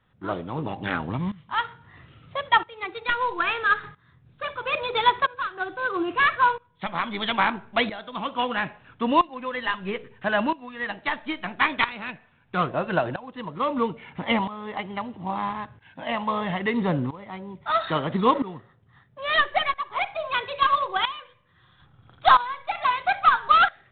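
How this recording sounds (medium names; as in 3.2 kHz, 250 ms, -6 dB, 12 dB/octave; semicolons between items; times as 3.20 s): tremolo saw up 0.76 Hz, depth 85%; IMA ADPCM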